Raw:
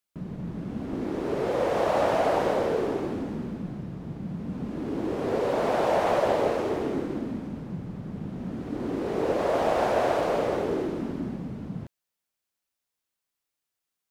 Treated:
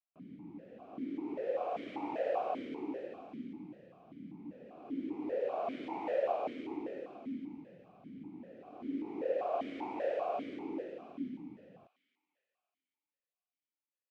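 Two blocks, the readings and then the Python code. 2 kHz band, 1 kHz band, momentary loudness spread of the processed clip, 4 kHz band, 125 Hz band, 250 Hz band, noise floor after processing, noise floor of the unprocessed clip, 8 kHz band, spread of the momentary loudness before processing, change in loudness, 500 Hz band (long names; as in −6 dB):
−15.5 dB, −11.5 dB, 17 LU, −16.5 dB, −23.0 dB, −10.5 dB, below −85 dBFS, −85 dBFS, below −25 dB, 12 LU, −11.0 dB, −12.0 dB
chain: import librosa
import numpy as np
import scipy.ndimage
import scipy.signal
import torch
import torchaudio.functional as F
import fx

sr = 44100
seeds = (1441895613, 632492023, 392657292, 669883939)

y = fx.echo_wet_highpass(x, sr, ms=283, feedback_pct=52, hz=2100.0, wet_db=-7)
y = fx.vowel_held(y, sr, hz=5.1)
y = y * 10.0 ** (-2.0 / 20.0)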